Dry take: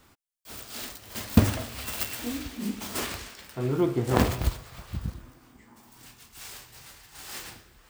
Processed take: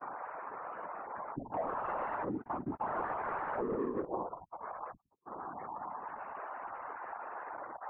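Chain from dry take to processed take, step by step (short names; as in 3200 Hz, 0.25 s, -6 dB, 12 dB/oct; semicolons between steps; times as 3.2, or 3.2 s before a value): delta modulation 16 kbps, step -31.5 dBFS; bell 880 Hz +9 dB 1.3 oct; spectral gate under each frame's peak -10 dB strong; HPF 420 Hz 12 dB/oct; gate -41 dBFS, range -30 dB; 1.54–4.05 sample leveller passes 5; whisperiser; compressor 2:1, threshold -38 dBFS, peak gain reduction 11.5 dB; LPF 1500 Hz 24 dB/oct; Doppler distortion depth 0.11 ms; gain -2.5 dB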